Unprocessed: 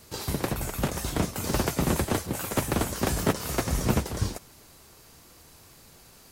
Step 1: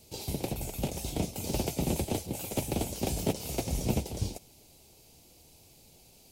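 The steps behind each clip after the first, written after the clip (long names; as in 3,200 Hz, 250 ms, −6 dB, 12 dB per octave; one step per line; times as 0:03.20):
flat-topped bell 1,400 Hz −15 dB 1.1 octaves
level −4.5 dB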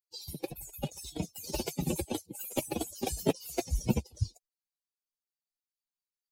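spectral dynamics exaggerated over time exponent 3
level +6.5 dB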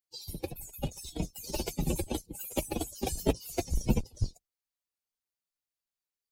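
sub-octave generator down 2 octaves, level −1 dB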